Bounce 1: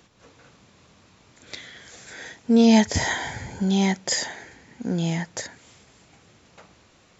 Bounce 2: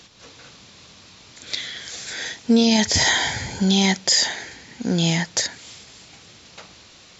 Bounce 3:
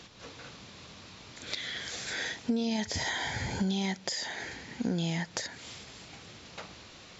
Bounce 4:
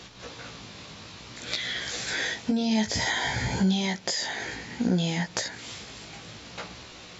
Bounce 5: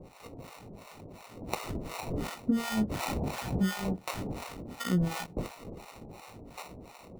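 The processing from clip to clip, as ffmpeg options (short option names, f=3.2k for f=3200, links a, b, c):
-af "equalizer=f=4.4k:t=o:w=1.7:g=11.5,alimiter=level_in=11dB:limit=-1dB:release=50:level=0:latency=1,volume=-7dB"
-af "acompressor=threshold=-28dB:ratio=6,highshelf=f=4k:g=-8.5"
-af "flanger=delay=16:depth=2.7:speed=0.58,volume=8.5dB"
-filter_complex "[0:a]acrusher=samples=27:mix=1:aa=0.000001,acrossover=split=630[a][b];[a]aeval=exprs='val(0)*(1-1/2+1/2*cos(2*PI*2.8*n/s))':c=same[c];[b]aeval=exprs='val(0)*(1-1/2-1/2*cos(2*PI*2.8*n/s))':c=same[d];[c][d]amix=inputs=2:normalize=0"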